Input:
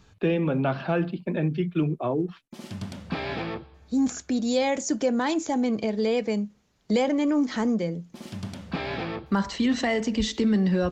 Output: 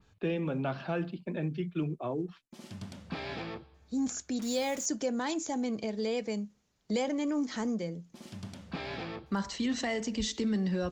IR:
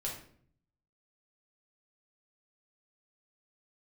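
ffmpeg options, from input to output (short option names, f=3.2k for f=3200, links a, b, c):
-filter_complex "[0:a]adynamicequalizer=threshold=0.00316:dfrequency=6900:dqfactor=0.82:tfrequency=6900:tqfactor=0.82:attack=5:release=100:ratio=0.375:range=3.5:mode=boostabove:tftype=bell,asettb=1/sr,asplit=3[a][b][c];[a]atrim=end=4.394[d];[b]atrim=start=4.39:end=4.86,asetpts=PTS-STARTPTS,afade=t=in:d=0.004:c=qsin,afade=t=out:st=0.466:d=0.004:c=qsin,acrusher=bits=5:mix=0:aa=0.5[e];[c]atrim=start=4.856[f];[d][e]acrossfade=d=0.004:c1=hsin:c2=qsin[g];[g][f]acrossfade=d=0.004:c1=qsin:c2=hsin,volume=-8dB"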